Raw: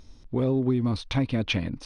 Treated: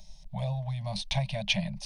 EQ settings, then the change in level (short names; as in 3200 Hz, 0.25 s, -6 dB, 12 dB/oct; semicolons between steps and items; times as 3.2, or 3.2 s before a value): Chebyshev band-stop 200–580 Hz, order 5; high shelf 5600 Hz +4.5 dB; fixed phaser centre 350 Hz, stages 6; +3.0 dB